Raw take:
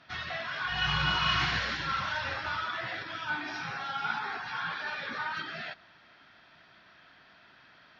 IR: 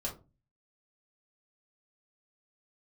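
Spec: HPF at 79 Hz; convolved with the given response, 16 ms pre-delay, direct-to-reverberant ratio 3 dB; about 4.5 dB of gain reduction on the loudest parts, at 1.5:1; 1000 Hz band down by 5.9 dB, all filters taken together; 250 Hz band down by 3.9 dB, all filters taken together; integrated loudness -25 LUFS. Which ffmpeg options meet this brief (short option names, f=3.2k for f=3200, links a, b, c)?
-filter_complex "[0:a]highpass=79,equalizer=f=250:t=o:g=-6.5,equalizer=f=1k:t=o:g=-8,acompressor=threshold=-39dB:ratio=1.5,asplit=2[a][b];[1:a]atrim=start_sample=2205,adelay=16[c];[b][c]afir=irnorm=-1:irlink=0,volume=-4.5dB[d];[a][d]amix=inputs=2:normalize=0,volume=10.5dB"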